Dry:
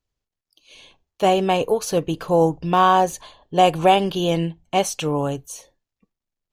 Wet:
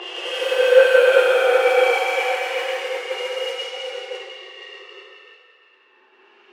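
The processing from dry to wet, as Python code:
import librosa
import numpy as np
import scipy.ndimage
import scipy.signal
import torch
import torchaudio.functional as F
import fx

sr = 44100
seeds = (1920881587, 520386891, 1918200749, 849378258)

p1 = fx.sine_speech(x, sr)
p2 = 10.0 ** (-20.0 / 20.0) * np.tanh(p1 / 10.0 ** (-20.0 / 20.0))
p3 = p1 + (p2 * 10.0 ** (-9.0 / 20.0))
p4 = fx.room_shoebox(p3, sr, seeds[0], volume_m3=160.0, walls='furnished', distance_m=2.4)
p5 = fx.leveller(p4, sr, passes=2)
p6 = fx.paulstretch(p5, sr, seeds[1], factor=27.0, window_s=0.05, from_s=4.26)
p7 = scipy.signal.sosfilt(scipy.signal.butter(4, 730.0, 'highpass', fs=sr, output='sos'), p6)
p8 = p7 + fx.echo_single(p7, sr, ms=165, db=-6.0, dry=0)
p9 = fx.env_lowpass(p8, sr, base_hz=2200.0, full_db=-13.5)
p10 = fx.band_widen(p9, sr, depth_pct=100)
y = p10 * 10.0 ** (-4.0 / 20.0)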